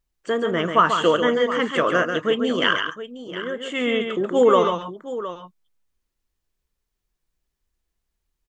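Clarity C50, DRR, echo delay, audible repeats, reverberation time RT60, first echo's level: none, none, 0.139 s, 2, none, -6.5 dB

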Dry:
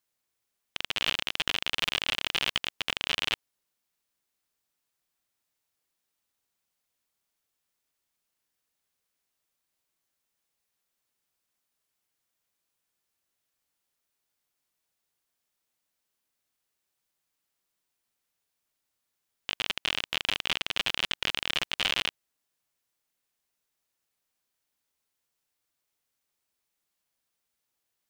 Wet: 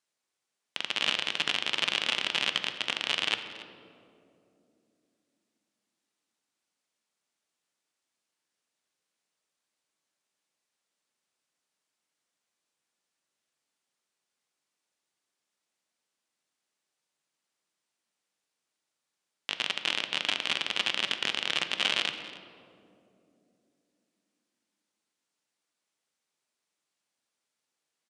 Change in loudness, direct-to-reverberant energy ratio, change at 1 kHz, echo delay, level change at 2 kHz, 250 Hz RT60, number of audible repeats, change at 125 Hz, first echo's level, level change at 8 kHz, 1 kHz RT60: +0.5 dB, 7.5 dB, +0.5 dB, 0.281 s, +0.5 dB, 4.4 s, 1, -4.5 dB, -17.5 dB, 0.0 dB, 2.3 s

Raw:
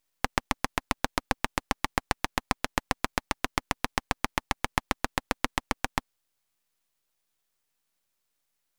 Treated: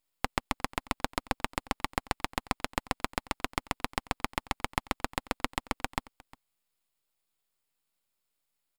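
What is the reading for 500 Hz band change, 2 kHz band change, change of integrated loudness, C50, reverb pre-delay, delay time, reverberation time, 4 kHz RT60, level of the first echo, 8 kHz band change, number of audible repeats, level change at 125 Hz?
-3.0 dB, -4.5 dB, -3.5 dB, none, none, 0.356 s, none, none, -22.0 dB, -5.0 dB, 1, -3.0 dB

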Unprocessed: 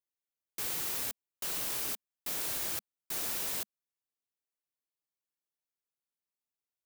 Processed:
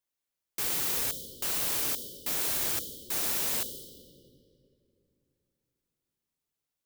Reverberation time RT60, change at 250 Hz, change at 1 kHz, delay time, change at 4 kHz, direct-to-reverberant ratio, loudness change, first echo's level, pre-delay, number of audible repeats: 2.8 s, +6.0 dB, +4.5 dB, none, +5.5 dB, 8.5 dB, +5.0 dB, none, 23 ms, none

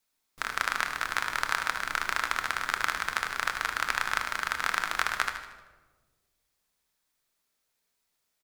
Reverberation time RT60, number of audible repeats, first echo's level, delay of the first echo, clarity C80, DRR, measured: 1.3 s, 3, -10.0 dB, 77 ms, 9.5 dB, 4.5 dB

